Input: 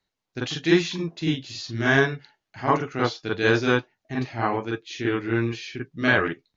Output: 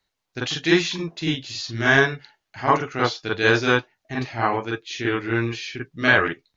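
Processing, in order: bell 210 Hz -5.5 dB 2.5 oct; gain +4.5 dB

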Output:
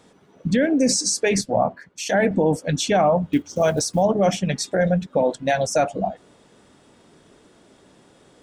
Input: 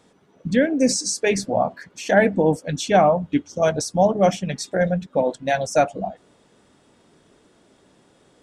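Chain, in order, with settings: 3.33–4.03 block floating point 7-bit; limiter -13.5 dBFS, peak gain reduction 9 dB; 1.41–2.31 three-band expander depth 100%; gain +3.5 dB

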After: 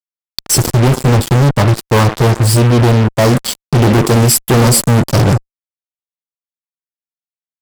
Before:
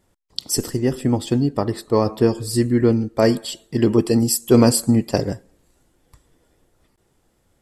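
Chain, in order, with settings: graphic EQ 125/1000/2000 Hz +12/+8/-11 dB; 2.01–3.38 compressor 1.5:1, threshold -17 dBFS, peak gain reduction 4.5 dB; fuzz box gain 30 dB, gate -29 dBFS; gain +6 dB

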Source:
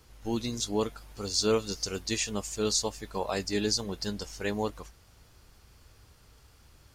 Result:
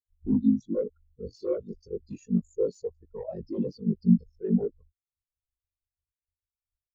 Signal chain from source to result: ring modulator 25 Hz; sine folder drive 16 dB, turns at -14.5 dBFS; spectral expander 4:1; gain +2 dB

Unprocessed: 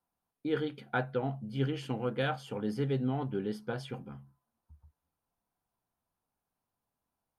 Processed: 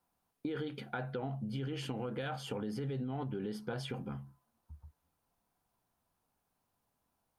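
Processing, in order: limiter -30 dBFS, peak gain reduction 11 dB; compressor 4:1, threshold -41 dBFS, peak gain reduction 6.5 dB; gain +5.5 dB

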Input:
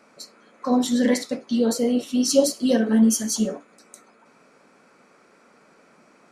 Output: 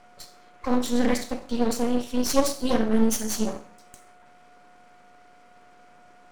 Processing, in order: Schroeder reverb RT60 0.53 s, combs from 29 ms, DRR 10 dB; whine 720 Hz -48 dBFS; half-wave rectifier

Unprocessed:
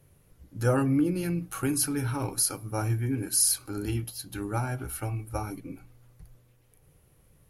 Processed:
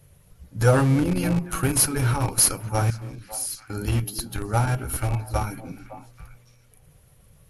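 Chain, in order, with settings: bin magnitudes rounded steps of 15 dB; bell 320 Hz -9 dB 0.64 oct; in parallel at -4.5 dB: Schmitt trigger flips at -27.5 dBFS; 2.9–3.7 on the sum: passive tone stack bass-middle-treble 6-0-2; on a send: delay with a stepping band-pass 0.279 s, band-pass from 280 Hz, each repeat 1.4 oct, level -9 dB; on the sum: gain +7 dB; MP2 128 kbps 44100 Hz

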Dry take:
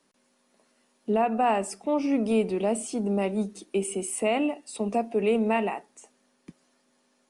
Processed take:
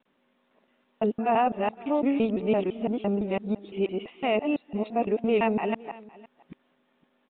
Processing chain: local time reversal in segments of 0.169 s; downsampling 8000 Hz; echo 0.512 s -21.5 dB

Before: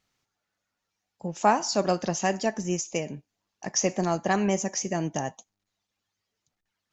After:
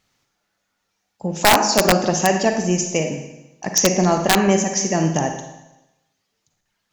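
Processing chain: Schroeder reverb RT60 0.96 s, DRR 5 dB; wrapped overs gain 12 dB; gain +8 dB

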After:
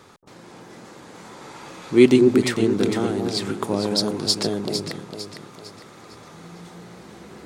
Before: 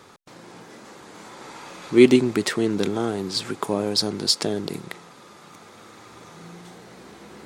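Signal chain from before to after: low shelf 200 Hz +4 dB; on a send: echo with dull and thin repeats by turns 0.227 s, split 930 Hz, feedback 64%, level -4 dB; on the sum: gain -1 dB

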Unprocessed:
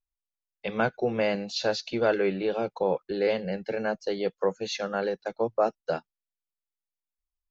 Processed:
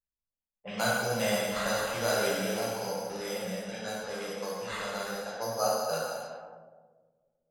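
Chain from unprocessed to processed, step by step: sample-and-hold 8×; low-pass opened by the level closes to 1500 Hz, open at -24.5 dBFS; bell 360 Hz -14 dB 0.5 oct; 2.74–5.34 compressor 5:1, threshold -31 dBFS, peak gain reduction 8 dB; low shelf 500 Hz -5 dB; dark delay 0.123 s, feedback 75%, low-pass 540 Hz, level -23 dB; plate-style reverb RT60 1.9 s, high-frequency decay 0.9×, DRR -7.5 dB; low-pass opened by the level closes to 420 Hz, open at -26 dBFS; gain -6 dB

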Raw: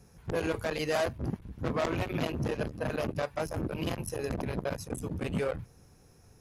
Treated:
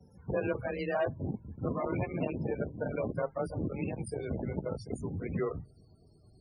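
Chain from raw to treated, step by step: gliding pitch shift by -3.5 st starting unshifted; frequency shift +24 Hz; loudest bins only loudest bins 32

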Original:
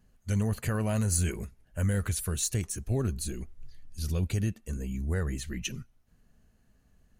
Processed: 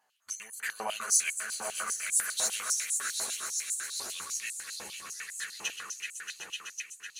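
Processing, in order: chorus voices 4, 0.81 Hz, delay 11 ms, depth 3.4 ms; swelling echo 0.126 s, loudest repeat 5, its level -10 dB; stepped high-pass 10 Hz 850–7900 Hz; gain +3 dB

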